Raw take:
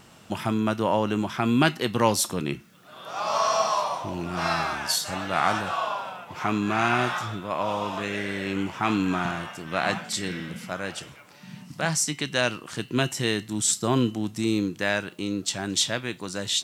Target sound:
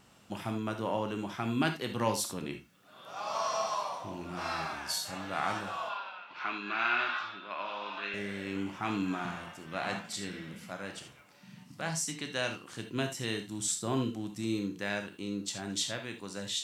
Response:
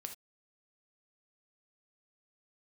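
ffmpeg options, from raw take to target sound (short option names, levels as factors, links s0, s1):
-filter_complex "[0:a]asettb=1/sr,asplit=3[s0][s1][s2];[s0]atrim=end=5.894[s3];[s1]atrim=start=5.89:end=8.14,asetpts=PTS-STARTPTS,afade=t=in:d=0.004:c=qsin,afade=t=out:st=2.246:d=0.004:c=qsin,highpass=400,equalizer=f=480:t=q:w=4:g=-8,equalizer=f=740:t=q:w=4:g=-5,equalizer=f=1500:t=q:w=4:g=7,equalizer=f=2600:t=q:w=4:g=7,equalizer=f=4100:t=q:w=4:g=7,lowpass=f=4700:w=0.5412,lowpass=f=4700:w=1.3066[s4];[s2]atrim=start=8.136[s5];[s3][s4]acrossfade=d=0.004:c1=hsin:c2=qsin[s6];[s6][s5]acrossfade=d=0.004:c1=qsin:c2=hsin[s7];[1:a]atrim=start_sample=2205[s8];[s7][s8]afir=irnorm=-1:irlink=0,volume=0.531"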